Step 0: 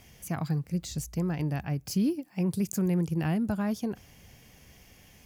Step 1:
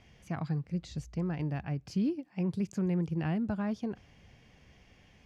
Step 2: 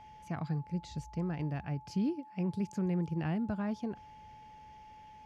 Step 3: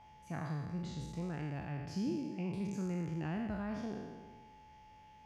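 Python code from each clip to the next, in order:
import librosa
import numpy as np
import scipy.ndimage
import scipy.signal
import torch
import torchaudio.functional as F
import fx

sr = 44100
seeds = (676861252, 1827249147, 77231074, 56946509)

y1 = scipy.signal.sosfilt(scipy.signal.butter(2, 3800.0, 'lowpass', fs=sr, output='sos'), x)
y1 = y1 * librosa.db_to_amplitude(-3.5)
y2 = y1 + 10.0 ** (-49.0 / 20.0) * np.sin(2.0 * np.pi * 860.0 * np.arange(len(y1)) / sr)
y2 = y2 * librosa.db_to_amplitude(-2.0)
y3 = fx.spec_trails(y2, sr, decay_s=1.42)
y3 = y3 * librosa.db_to_amplitude(-6.0)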